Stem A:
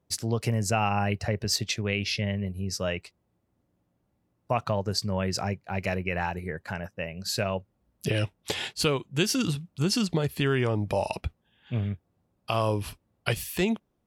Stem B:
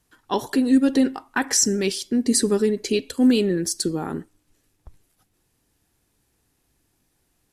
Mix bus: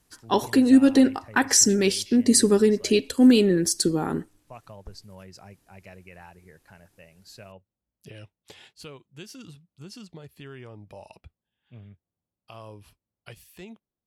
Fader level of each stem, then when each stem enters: -17.5 dB, +1.5 dB; 0.00 s, 0.00 s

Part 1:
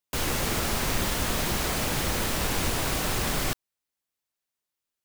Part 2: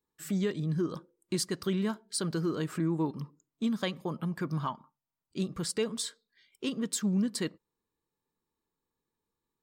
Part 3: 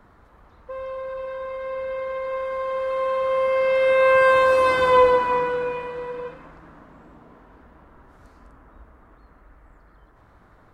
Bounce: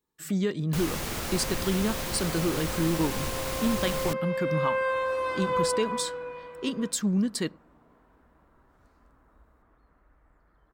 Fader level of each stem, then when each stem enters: -5.5 dB, +3.0 dB, -11.5 dB; 0.60 s, 0.00 s, 0.60 s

